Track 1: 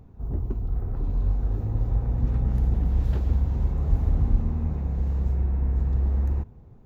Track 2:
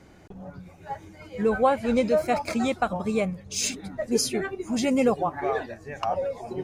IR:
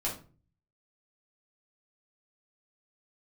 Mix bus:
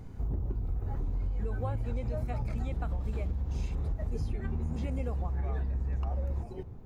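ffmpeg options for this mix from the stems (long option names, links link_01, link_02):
-filter_complex "[0:a]acompressor=threshold=-23dB:ratio=6,volume=1.5dB,asplit=2[link_01][link_02];[link_02]volume=-15dB[link_03];[1:a]highshelf=frequency=10000:gain=7,acrossover=split=3300[link_04][link_05];[link_05]acompressor=threshold=-45dB:ratio=4:attack=1:release=60[link_06];[link_04][link_06]amix=inputs=2:normalize=0,volume=-10dB[link_07];[2:a]atrim=start_sample=2205[link_08];[link_03][link_08]afir=irnorm=-1:irlink=0[link_09];[link_01][link_07][link_09]amix=inputs=3:normalize=0,acompressor=threshold=-29dB:ratio=6"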